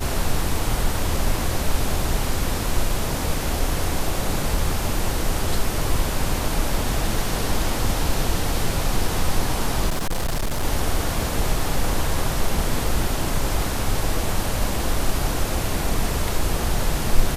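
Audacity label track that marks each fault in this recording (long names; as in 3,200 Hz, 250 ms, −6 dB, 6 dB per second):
9.890000	10.640000	clipping −19 dBFS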